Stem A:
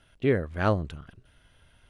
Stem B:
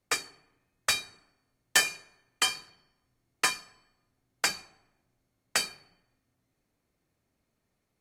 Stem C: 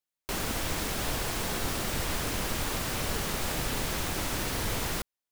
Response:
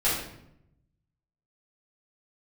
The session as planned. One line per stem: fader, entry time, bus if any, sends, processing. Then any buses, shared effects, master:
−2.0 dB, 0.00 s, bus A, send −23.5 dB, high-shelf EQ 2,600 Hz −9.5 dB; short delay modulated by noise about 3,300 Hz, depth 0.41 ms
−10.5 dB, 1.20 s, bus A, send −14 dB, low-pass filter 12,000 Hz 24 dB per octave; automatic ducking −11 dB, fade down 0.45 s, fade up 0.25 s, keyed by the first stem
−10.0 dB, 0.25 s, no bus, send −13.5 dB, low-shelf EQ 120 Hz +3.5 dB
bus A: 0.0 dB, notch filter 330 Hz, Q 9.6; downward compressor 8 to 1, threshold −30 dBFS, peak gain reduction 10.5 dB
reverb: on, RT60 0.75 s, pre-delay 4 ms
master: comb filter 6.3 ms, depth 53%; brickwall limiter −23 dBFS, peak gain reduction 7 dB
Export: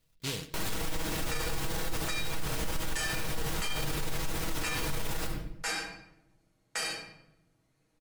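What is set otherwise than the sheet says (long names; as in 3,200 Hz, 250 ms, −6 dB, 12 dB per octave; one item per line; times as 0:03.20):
stem A −2.0 dB → −11.5 dB
stem B −10.5 dB → +1.0 dB
stem C −10.0 dB → −2.5 dB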